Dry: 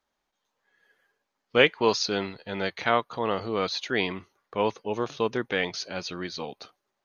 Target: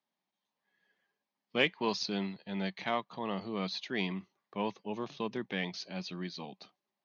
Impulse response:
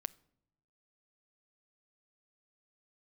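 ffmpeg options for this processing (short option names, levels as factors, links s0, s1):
-af "aeval=exprs='0.708*(cos(1*acos(clip(val(0)/0.708,-1,1)))-cos(1*PI/2))+0.02*(cos(6*acos(clip(val(0)/0.708,-1,1)))-cos(6*PI/2))':c=same,highpass=f=120:w=0.5412,highpass=f=120:w=1.3066,equalizer=f=190:t=q:w=4:g=9,equalizer=f=480:t=q:w=4:g=-7,equalizer=f=1400:t=q:w=4:g=-9,lowpass=f=5700:w=0.5412,lowpass=f=5700:w=1.3066,volume=0.447"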